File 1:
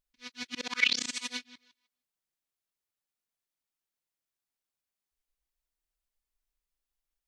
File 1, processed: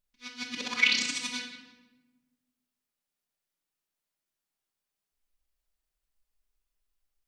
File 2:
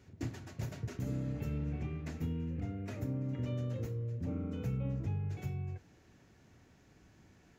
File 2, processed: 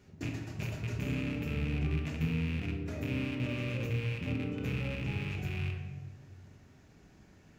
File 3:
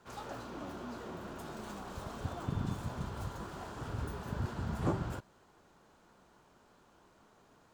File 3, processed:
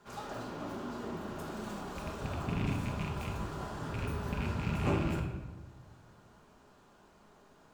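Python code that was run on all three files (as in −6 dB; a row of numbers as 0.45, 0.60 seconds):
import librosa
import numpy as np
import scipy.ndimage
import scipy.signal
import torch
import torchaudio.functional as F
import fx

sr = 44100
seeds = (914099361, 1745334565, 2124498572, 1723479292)

y = fx.rattle_buzz(x, sr, strikes_db=-36.0, level_db=-32.0)
y = fx.room_shoebox(y, sr, seeds[0], volume_m3=610.0, walls='mixed', distance_m=1.3)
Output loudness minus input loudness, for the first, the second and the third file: +2.5, +3.5, +3.5 LU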